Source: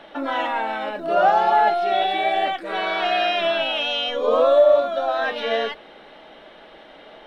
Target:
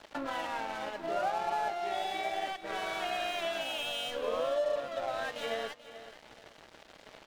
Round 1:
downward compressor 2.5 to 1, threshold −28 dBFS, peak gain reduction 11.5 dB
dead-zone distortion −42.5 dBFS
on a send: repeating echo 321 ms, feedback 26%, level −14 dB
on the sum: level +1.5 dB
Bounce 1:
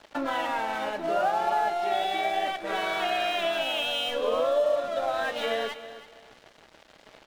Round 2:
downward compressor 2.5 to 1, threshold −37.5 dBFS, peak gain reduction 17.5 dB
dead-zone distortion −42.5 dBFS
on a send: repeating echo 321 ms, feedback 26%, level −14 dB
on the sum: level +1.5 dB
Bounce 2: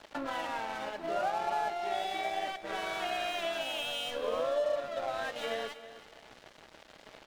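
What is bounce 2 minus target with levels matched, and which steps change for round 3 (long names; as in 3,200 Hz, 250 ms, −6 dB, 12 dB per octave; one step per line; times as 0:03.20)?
echo 114 ms early
change: repeating echo 435 ms, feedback 26%, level −14 dB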